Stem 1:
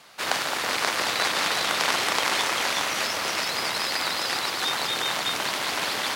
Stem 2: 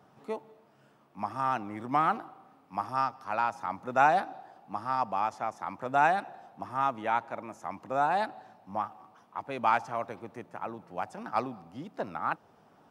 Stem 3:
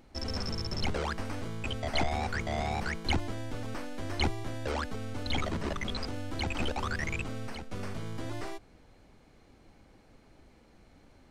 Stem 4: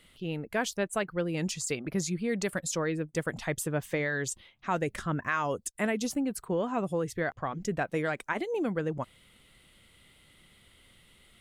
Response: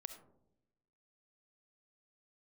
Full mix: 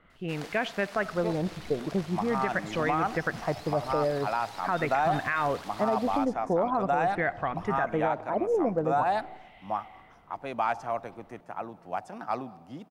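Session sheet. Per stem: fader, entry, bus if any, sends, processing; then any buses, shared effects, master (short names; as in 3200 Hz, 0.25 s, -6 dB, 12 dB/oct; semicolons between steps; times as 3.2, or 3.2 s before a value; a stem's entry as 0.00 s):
-17.0 dB, 0.10 s, send -17 dB, AGC gain up to 8 dB; auto duck -12 dB, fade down 1.20 s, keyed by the fourth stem
-0.5 dB, 0.95 s, no send, dry
-13.5 dB, 0.80 s, no send, LPF 3000 Hz; endless phaser -1.3 Hz
-1.5 dB, 0.00 s, send -6 dB, LFO low-pass sine 0.44 Hz 610–2500 Hz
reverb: on, RT60 0.90 s, pre-delay 25 ms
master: bell 700 Hz +5.5 dB 0.25 oct; limiter -17 dBFS, peak gain reduction 7.5 dB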